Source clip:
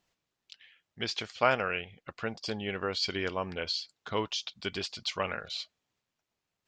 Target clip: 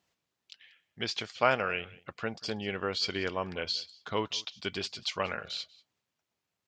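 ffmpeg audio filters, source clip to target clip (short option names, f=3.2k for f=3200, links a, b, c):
-af "highpass=65,aecho=1:1:188:0.075"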